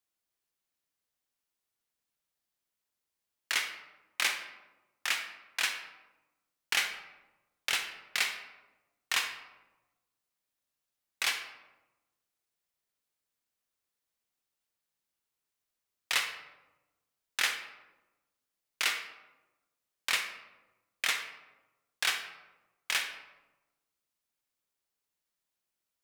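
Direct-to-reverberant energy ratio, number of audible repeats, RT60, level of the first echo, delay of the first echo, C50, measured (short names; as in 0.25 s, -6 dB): 6.5 dB, none, 1.1 s, none, none, 7.5 dB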